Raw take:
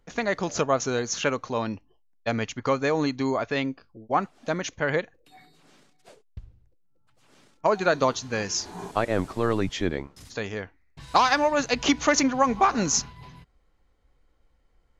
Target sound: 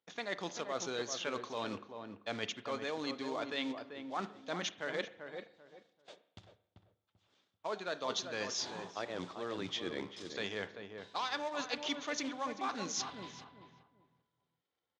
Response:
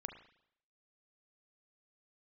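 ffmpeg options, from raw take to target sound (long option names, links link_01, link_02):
-filter_complex "[0:a]agate=range=-14dB:threshold=-50dB:ratio=16:detection=peak,lowshelf=frequency=500:gain=-3,areverse,acompressor=threshold=-34dB:ratio=8,areverse,acrusher=bits=4:mode=log:mix=0:aa=0.000001,highpass=frequency=120:width=0.5412,highpass=frequency=120:width=1.3066,equalizer=frequency=140:width_type=q:width=4:gain=-10,equalizer=frequency=230:width_type=q:width=4:gain=-4,equalizer=frequency=3500:width_type=q:width=4:gain=10,lowpass=frequency=6700:width=0.5412,lowpass=frequency=6700:width=1.3066,asplit=2[link_01][link_02];[link_02]adelay=389,lowpass=frequency=1200:poles=1,volume=-6dB,asplit=2[link_03][link_04];[link_04]adelay=389,lowpass=frequency=1200:poles=1,volume=0.27,asplit=2[link_05][link_06];[link_06]adelay=389,lowpass=frequency=1200:poles=1,volume=0.27[link_07];[link_01][link_03][link_05][link_07]amix=inputs=4:normalize=0,asplit=2[link_08][link_09];[1:a]atrim=start_sample=2205[link_10];[link_09][link_10]afir=irnorm=-1:irlink=0,volume=-1dB[link_11];[link_08][link_11]amix=inputs=2:normalize=0,volume=-5.5dB"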